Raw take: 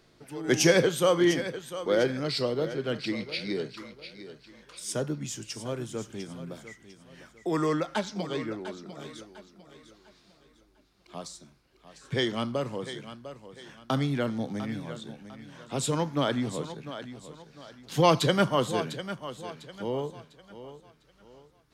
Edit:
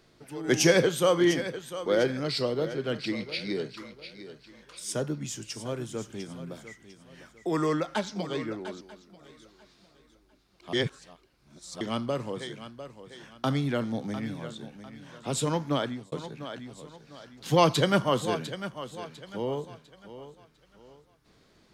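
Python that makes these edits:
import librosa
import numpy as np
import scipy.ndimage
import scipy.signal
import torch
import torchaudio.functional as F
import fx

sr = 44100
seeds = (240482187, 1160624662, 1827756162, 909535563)

y = fx.edit(x, sr, fx.cut(start_s=8.81, length_s=0.46),
    fx.reverse_span(start_s=11.19, length_s=1.08),
    fx.fade_out_span(start_s=16.18, length_s=0.4), tone=tone)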